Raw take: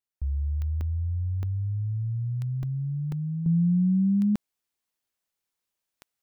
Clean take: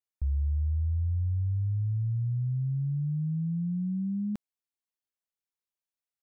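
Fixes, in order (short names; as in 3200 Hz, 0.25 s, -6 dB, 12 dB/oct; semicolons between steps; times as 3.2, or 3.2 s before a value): de-click; interpolate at 0.81/1.43/2.63/3.12, 2.3 ms; gain correction -8.5 dB, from 3.46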